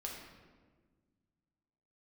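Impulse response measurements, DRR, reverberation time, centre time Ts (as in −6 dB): −2.0 dB, 1.5 s, 58 ms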